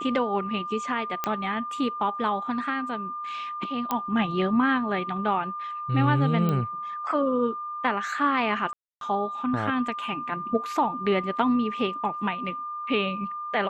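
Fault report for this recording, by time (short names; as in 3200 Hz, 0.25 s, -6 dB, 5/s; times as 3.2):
tone 1200 Hz -31 dBFS
1.24 pop -11 dBFS
3.91 pop -12 dBFS
6.49 pop -15 dBFS
8.73–9.01 gap 0.282 s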